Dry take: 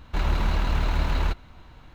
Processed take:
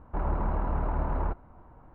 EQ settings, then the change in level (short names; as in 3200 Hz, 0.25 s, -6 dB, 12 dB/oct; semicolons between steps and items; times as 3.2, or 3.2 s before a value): ladder low-pass 1300 Hz, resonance 20%; low shelf 180 Hz -5.5 dB; +4.5 dB